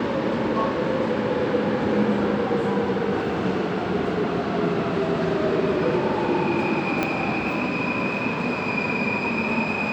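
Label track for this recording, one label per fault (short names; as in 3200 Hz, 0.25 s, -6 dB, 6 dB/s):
7.030000	7.030000	pop -9 dBFS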